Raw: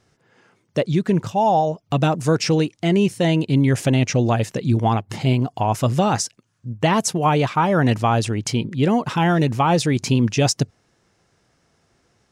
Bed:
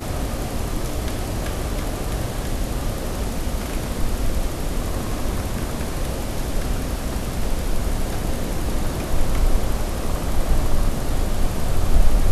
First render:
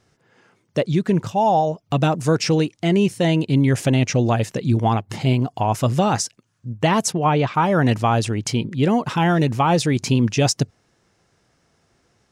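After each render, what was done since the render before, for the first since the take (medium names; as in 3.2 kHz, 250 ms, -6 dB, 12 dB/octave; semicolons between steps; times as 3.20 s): 7.12–7.54 s: distance through air 110 m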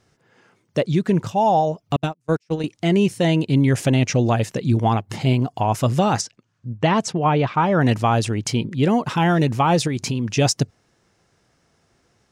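1.96–2.64 s: gate -16 dBFS, range -42 dB; 6.21–7.81 s: distance through air 85 m; 9.87–10.32 s: compression, threshold -19 dBFS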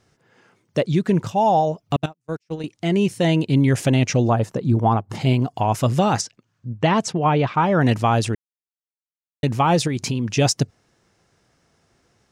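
2.06–3.28 s: fade in, from -12 dB; 4.28–5.15 s: resonant high shelf 1.6 kHz -7.5 dB, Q 1.5; 8.35–9.43 s: mute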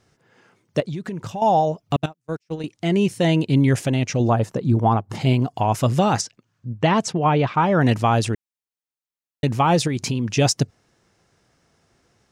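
0.80–1.42 s: compression, threshold -26 dBFS; 3.79–4.20 s: gain -3.5 dB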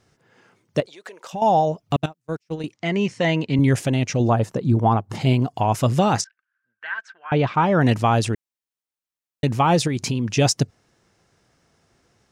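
0.86–1.33 s: Chebyshev high-pass 510 Hz, order 3; 2.74–3.59 s: cabinet simulation 140–6600 Hz, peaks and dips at 180 Hz -3 dB, 350 Hz -6 dB, 1.1 kHz +4 dB, 2 kHz +6 dB, 3.7 kHz -4 dB; 6.24–7.32 s: ladder band-pass 1.6 kHz, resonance 90%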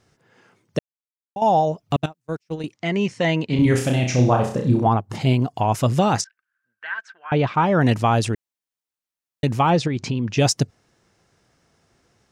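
0.79–1.36 s: mute; 3.46–4.87 s: flutter echo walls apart 5.5 m, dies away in 0.47 s; 9.70–10.38 s: distance through air 110 m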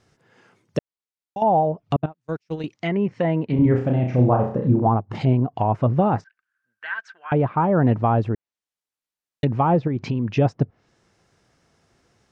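treble shelf 10 kHz -5 dB; low-pass that closes with the level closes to 1.1 kHz, closed at -18 dBFS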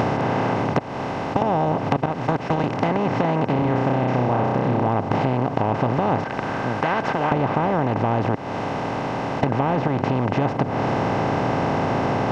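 spectral levelling over time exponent 0.2; compression 5:1, threshold -18 dBFS, peak gain reduction 11.5 dB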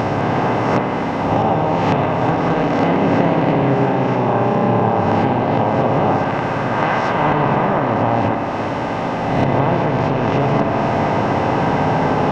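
reverse spectral sustain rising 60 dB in 1.15 s; spring tank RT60 3.7 s, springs 59 ms, chirp 65 ms, DRR 1 dB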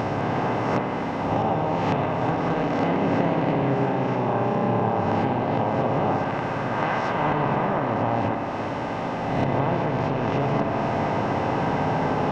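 trim -7 dB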